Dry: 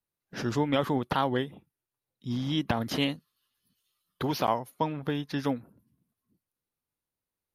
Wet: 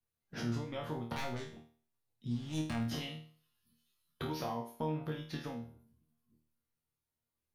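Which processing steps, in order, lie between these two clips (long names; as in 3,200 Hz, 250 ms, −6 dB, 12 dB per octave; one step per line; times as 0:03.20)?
0:01.16–0:02.84: phase distortion by the signal itself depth 0.38 ms
low-shelf EQ 170 Hz +8.5 dB
downward compressor 6 to 1, threshold −32 dBFS, peak gain reduction 12.5 dB
resonators tuned to a chord D#2 fifth, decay 0.44 s
level +9.5 dB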